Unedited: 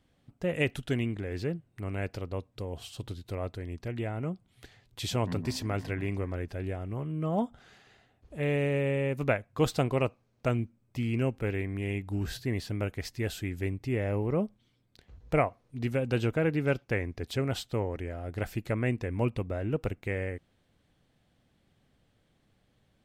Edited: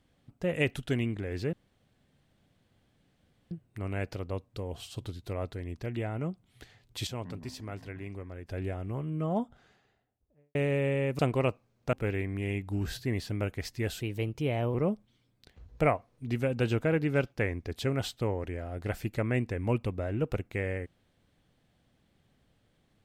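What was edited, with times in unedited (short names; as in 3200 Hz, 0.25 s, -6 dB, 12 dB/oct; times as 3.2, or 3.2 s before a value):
1.53 insert room tone 1.98 s
5.09–6.51 gain -8.5 dB
7.01–8.57 studio fade out
9.21–9.76 cut
10.5–11.33 cut
13.4–14.26 speed 116%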